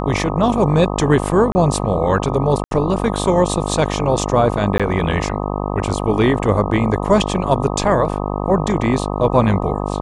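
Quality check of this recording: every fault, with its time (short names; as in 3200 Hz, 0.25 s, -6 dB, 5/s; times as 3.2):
buzz 50 Hz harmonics 25 -22 dBFS
1.52–1.55 gap 30 ms
2.64–2.71 gap 72 ms
4.78–4.8 gap 16 ms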